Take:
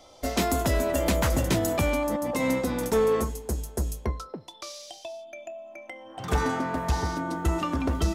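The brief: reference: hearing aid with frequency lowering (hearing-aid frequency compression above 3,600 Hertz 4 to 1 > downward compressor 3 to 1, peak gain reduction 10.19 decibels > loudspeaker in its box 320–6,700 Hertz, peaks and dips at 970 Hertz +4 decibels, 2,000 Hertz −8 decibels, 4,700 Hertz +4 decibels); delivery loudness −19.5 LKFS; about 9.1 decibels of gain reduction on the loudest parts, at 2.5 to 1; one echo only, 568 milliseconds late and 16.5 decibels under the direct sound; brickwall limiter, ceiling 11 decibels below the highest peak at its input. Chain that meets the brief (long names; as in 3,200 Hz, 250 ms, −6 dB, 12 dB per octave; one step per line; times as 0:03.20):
downward compressor 2.5 to 1, threshold −34 dBFS
brickwall limiter −31 dBFS
single-tap delay 568 ms −16.5 dB
hearing-aid frequency compression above 3,600 Hz 4 to 1
downward compressor 3 to 1, threshold −47 dBFS
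loudspeaker in its box 320–6,700 Hz, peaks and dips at 970 Hz +4 dB, 2,000 Hz −8 dB, 4,700 Hz +4 dB
level +29 dB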